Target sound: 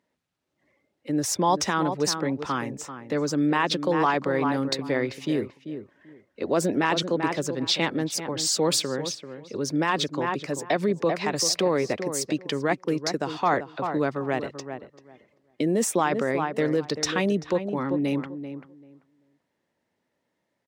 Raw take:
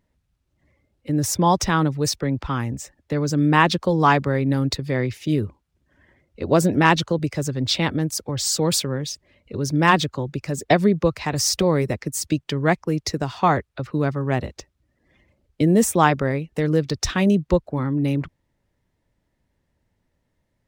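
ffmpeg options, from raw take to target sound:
-filter_complex "[0:a]highshelf=f=11000:g=-10,asplit=2[s0][s1];[s1]adelay=389,lowpass=f=1600:p=1,volume=0.316,asplit=2[s2][s3];[s3]adelay=389,lowpass=f=1600:p=1,volume=0.18,asplit=2[s4][s5];[s5]adelay=389,lowpass=f=1600:p=1,volume=0.18[s6];[s2][s4][s6]amix=inputs=3:normalize=0[s7];[s0][s7]amix=inputs=2:normalize=0,alimiter=limit=0.251:level=0:latency=1:release=39,highpass=270"

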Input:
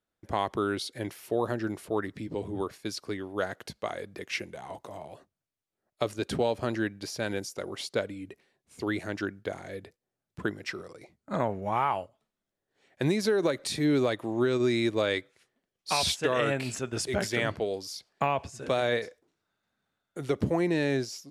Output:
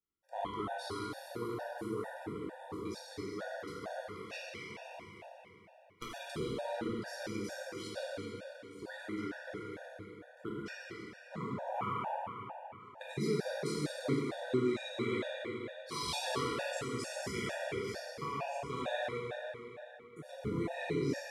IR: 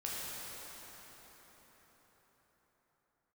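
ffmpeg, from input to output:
-filter_complex "[0:a]asettb=1/sr,asplit=3[s0][s1][s2];[s0]atrim=end=4.634[s3];[s1]atrim=start=4.63:end=6.11,asetpts=PTS-STARTPTS,afade=t=in:d=0.004:c=qsin,afade=t=out:st=1.476:d=0.004:c=qsin,aeval=exprs='0.299*(cos(1*acos(clip(val(0)/0.299,-1,1)))-cos(1*PI/2))+0.0841*(cos(7*acos(clip(val(0)/0.299,-1,1)))-cos(7*PI/2))':c=same[s4];[s2]atrim=start=6.106[s5];[s3][s4]acrossfade=d=0.004:c1=hsin:c2=qsin[s6];[s6][s5]acrossfade=d=0.004:c1=qsin:c2=hsin[s7];[1:a]atrim=start_sample=2205,asetrate=70560,aresample=44100[s8];[s7][s8]afir=irnorm=-1:irlink=0,afftfilt=real='re*gt(sin(2*PI*2.2*pts/sr)*(1-2*mod(floor(b*sr/1024/480),2)),0)':imag='im*gt(sin(2*PI*2.2*pts/sr)*(1-2*mod(floor(b*sr/1024/480),2)),0)':win_size=1024:overlap=0.75,volume=0.631"

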